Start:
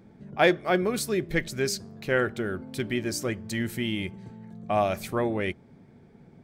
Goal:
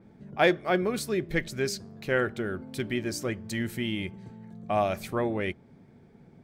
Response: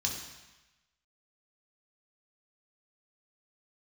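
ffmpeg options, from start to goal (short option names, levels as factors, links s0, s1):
-af "adynamicequalizer=threshold=0.00562:dfrequency=4800:dqfactor=0.7:tfrequency=4800:tqfactor=0.7:attack=5:release=100:ratio=0.375:range=2.5:mode=cutabove:tftype=highshelf,volume=0.841"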